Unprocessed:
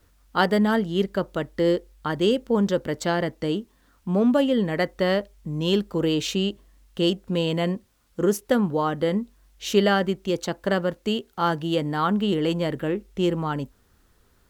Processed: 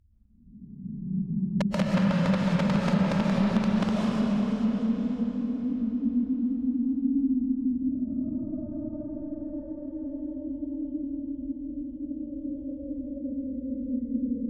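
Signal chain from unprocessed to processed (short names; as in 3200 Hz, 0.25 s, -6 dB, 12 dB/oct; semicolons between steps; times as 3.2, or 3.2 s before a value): Doppler pass-by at 5.6, 17 m/s, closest 8 m; low-pass sweep 650 Hz -> 110 Hz, 1.82–4.04; Paulstretch 28×, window 0.05 s, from 3.84; low shelf 320 Hz +5.5 dB; wrapped overs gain 28 dB; reverb RT60 4.5 s, pre-delay 0.1 s, DRR -5 dB; treble ducked by the level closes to 2600 Hz, closed at -22.5 dBFS; gain +5.5 dB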